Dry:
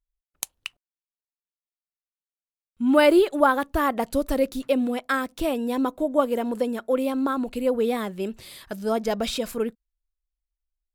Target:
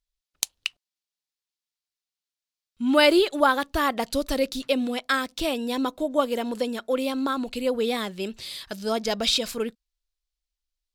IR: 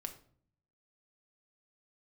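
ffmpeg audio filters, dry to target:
-af "equalizer=f=4400:w=0.68:g=12.5,volume=0.75"

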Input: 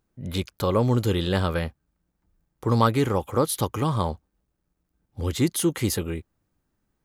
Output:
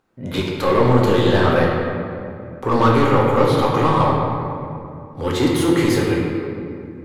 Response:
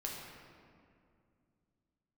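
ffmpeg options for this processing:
-filter_complex "[0:a]asettb=1/sr,asplit=3[s0][s1][s2];[s0]atrim=end=1.384[s3];[s1]atrim=start=1.38:end=3.75,asetpts=PTS-STARTPTS,afade=t=in:d=0.004:c=qsin,afade=t=out:st=2.366:d=0.004:c=qsin,acrossover=split=4500[s4][s5];[s5]acompressor=threshold=0.00891:ratio=4:attack=1:release=60[s6];[s4][s6]amix=inputs=2:normalize=0[s7];[s2]atrim=start=3.746[s8];[s3][s7]acrossfade=d=0.004:c1=hsin:c2=qsin[s9];[s9][s8]acrossfade=d=0.004:c1=qsin:c2=hsin,asplit=2[s10][s11];[s11]highpass=f=720:p=1,volume=17.8,asoftclip=type=tanh:threshold=0.596[s12];[s10][s12]amix=inputs=2:normalize=0,lowpass=f=1500:p=1,volume=0.501[s13];[1:a]atrim=start_sample=2205,asetrate=38808,aresample=44100[s14];[s13][s14]afir=irnorm=-1:irlink=0,volume=0.891"

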